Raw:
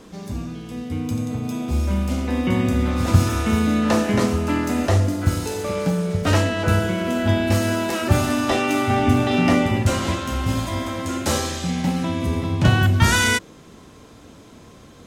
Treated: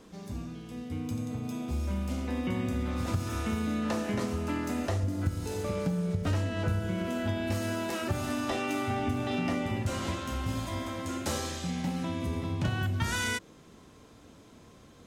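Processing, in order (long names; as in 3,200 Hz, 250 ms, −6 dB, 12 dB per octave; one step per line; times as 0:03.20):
0:05.03–0:07.06: low-shelf EQ 220 Hz +9 dB
downward compressor 4 to 1, threshold −18 dBFS, peak gain reduction 11.5 dB
level −9 dB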